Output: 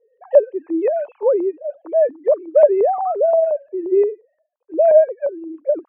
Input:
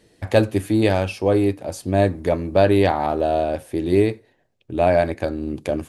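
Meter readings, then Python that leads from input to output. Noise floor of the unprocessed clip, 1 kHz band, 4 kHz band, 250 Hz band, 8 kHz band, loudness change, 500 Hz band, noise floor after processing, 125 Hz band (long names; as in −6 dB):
−64 dBFS, 0.0 dB, below −30 dB, −6.0 dB, can't be measured, +2.5 dB, +5.0 dB, −71 dBFS, below −40 dB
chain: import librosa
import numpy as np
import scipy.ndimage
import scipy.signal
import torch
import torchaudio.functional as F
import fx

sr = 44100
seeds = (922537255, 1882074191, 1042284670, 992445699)

y = fx.sine_speech(x, sr)
y = fx.filter_lfo_lowpass(y, sr, shape='saw_up', hz=5.7, low_hz=680.0, high_hz=1900.0, q=1.4)
y = fx.graphic_eq_10(y, sr, hz=(500, 1000, 2000), db=(8, 11, -3))
y = F.gain(torch.from_numpy(y), -8.0).numpy()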